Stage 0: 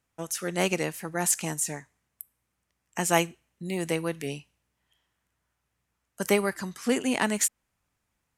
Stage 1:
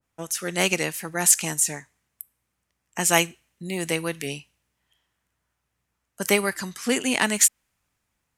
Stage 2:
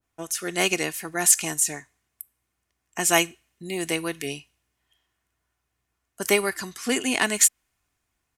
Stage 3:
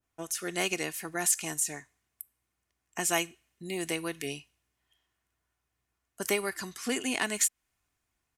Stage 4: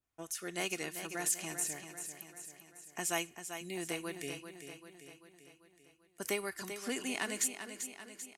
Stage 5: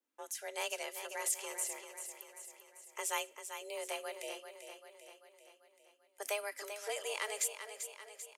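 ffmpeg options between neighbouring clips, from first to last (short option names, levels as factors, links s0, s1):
-af "adynamicequalizer=threshold=0.00891:dfrequency=1500:dqfactor=0.7:tfrequency=1500:tqfactor=0.7:attack=5:release=100:ratio=0.375:range=3.5:mode=boostabove:tftype=highshelf,volume=1.12"
-af "aecho=1:1:2.8:0.38,volume=0.891"
-af "acompressor=threshold=0.0447:ratio=1.5,volume=0.631"
-af "aecho=1:1:391|782|1173|1564|1955|2346|2737:0.355|0.199|0.111|0.0623|0.0349|0.0195|0.0109,volume=0.473"
-af "afreqshift=210,volume=0.794"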